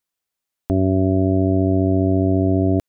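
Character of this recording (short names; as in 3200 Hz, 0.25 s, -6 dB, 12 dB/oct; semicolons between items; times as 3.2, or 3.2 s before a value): noise floor -83 dBFS; spectral tilt -8.0 dB/oct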